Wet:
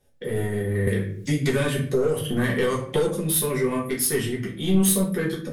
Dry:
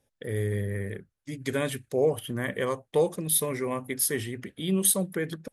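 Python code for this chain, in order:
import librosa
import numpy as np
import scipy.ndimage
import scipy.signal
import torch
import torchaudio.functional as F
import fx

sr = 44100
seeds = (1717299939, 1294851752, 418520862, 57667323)

y = fx.dynamic_eq(x, sr, hz=730.0, q=1.5, threshold_db=-41.0, ratio=4.0, max_db=-7)
y = 10.0 ** (-23.0 / 20.0) * np.tanh(y / 10.0 ** (-23.0 / 20.0))
y = fx.room_shoebox(y, sr, seeds[0], volume_m3=34.0, walls='mixed', distance_m=0.98)
y = fx.band_squash(y, sr, depth_pct=100, at=(0.87, 3.07))
y = F.gain(torch.from_numpy(y), 1.5).numpy()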